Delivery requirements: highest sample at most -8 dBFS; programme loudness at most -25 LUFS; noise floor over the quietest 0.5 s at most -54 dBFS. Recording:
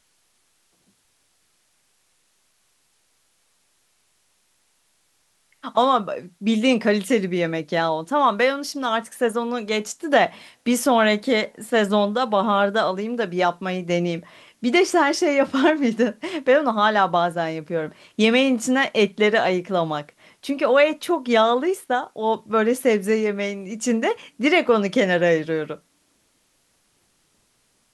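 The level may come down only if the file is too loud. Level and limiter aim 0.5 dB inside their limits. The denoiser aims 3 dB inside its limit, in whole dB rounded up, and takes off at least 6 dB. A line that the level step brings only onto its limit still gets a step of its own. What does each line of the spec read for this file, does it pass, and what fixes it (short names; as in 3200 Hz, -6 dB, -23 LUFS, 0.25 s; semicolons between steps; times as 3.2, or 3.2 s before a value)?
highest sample -5.5 dBFS: fail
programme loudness -21.0 LUFS: fail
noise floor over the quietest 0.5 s -65 dBFS: OK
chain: gain -4.5 dB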